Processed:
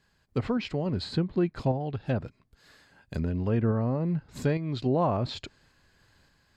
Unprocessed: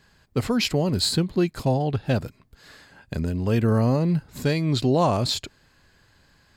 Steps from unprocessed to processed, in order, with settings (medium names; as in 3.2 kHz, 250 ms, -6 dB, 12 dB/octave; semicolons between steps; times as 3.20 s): random-step tremolo; low-pass that closes with the level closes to 1.8 kHz, closed at -20 dBFS; trim -3 dB